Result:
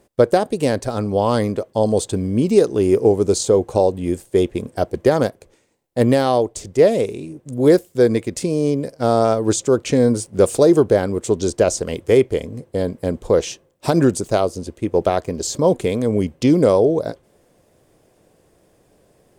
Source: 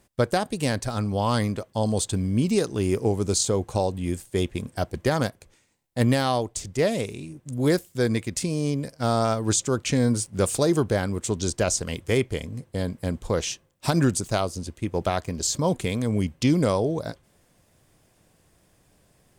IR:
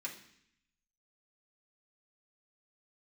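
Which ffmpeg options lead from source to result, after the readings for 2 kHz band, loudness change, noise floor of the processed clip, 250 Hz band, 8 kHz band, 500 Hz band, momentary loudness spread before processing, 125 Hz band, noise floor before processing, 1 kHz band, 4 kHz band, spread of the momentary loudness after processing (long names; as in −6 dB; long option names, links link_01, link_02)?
+1.5 dB, +7.0 dB, −59 dBFS, +6.5 dB, 0.0 dB, +10.5 dB, 8 LU, +1.5 dB, −63 dBFS, +5.5 dB, +0.5 dB, 9 LU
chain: -af "equalizer=frequency=450:width=0.83:gain=11.5"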